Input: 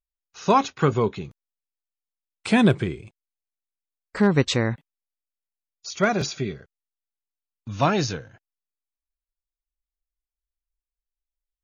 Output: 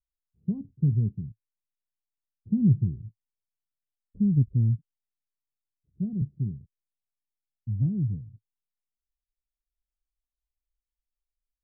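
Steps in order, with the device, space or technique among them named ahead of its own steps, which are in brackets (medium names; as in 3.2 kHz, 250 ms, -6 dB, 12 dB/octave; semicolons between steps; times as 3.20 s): the neighbour's flat through the wall (low-pass 200 Hz 24 dB/octave; peaking EQ 110 Hz +5.5 dB 0.52 oct)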